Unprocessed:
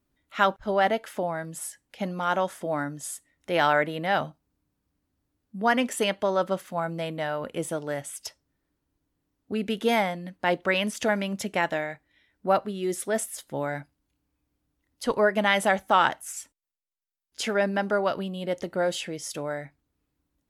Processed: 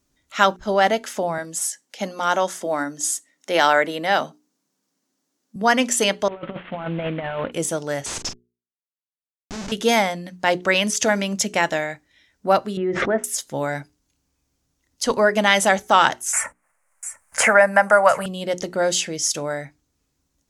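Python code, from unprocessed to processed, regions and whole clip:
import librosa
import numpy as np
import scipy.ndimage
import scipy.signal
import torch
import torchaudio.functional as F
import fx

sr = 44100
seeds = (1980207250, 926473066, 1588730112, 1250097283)

y = fx.chain(x, sr, fx.highpass(hz=200.0, slope=24),
    fx.notch(hz=2500.0, q=26.0), at=(1.38, 5.56))
y = fx.chain(y, sr, fx.cvsd(bps=16000),
    fx.over_compress(threshold_db=-32.0, ratio=-0.5), at=(6.28, 7.52))
y = fx.chain(y, sr, fx.schmitt(flips_db=-40.5),
    fx.lowpass(hz=6800.0, slope=12),
    fx.doubler(ms=41.0, db=-9.0), at=(8.06, 9.72))
y = fx.chain(y, sr, fx.lowpass(hz=1900.0, slope=24),
    fx.pre_swell(db_per_s=31.0), at=(12.77, 13.24))
y = fx.chain(y, sr, fx.curve_eq(hz=(120.0, 210.0, 360.0, 530.0, 1100.0, 2100.0, 3500.0, 5900.0, 9200.0, 14000.0), db=(0, -6, -17, 5, 8, 7, -16, -8, 12, -2)),
    fx.echo_single(ms=697, db=-21.0),
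    fx.band_squash(depth_pct=70), at=(16.33, 18.26))
y = fx.peak_eq(y, sr, hz=6300.0, db=12.5, octaves=0.98)
y = fx.hum_notches(y, sr, base_hz=60, count=7)
y = y * librosa.db_to_amplitude(5.0)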